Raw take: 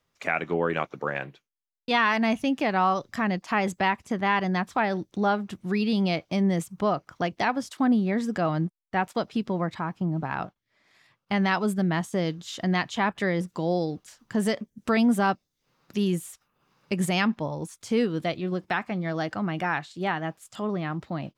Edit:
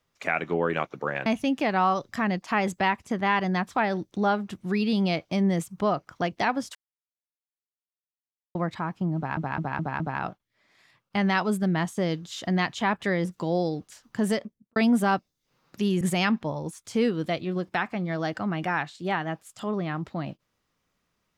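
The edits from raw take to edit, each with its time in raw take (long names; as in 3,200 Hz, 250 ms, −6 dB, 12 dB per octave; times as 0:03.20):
0:01.26–0:02.26: remove
0:07.75–0:09.55: silence
0:10.16: stutter 0.21 s, 5 plays
0:14.44–0:14.92: fade out and dull
0:16.17–0:16.97: remove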